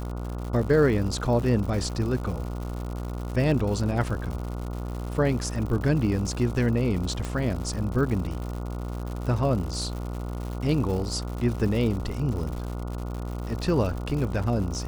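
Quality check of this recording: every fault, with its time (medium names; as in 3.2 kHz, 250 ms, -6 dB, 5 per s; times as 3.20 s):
buzz 60 Hz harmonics 24 -32 dBFS
crackle 170 per s -33 dBFS
7.25 s: pop -19 dBFS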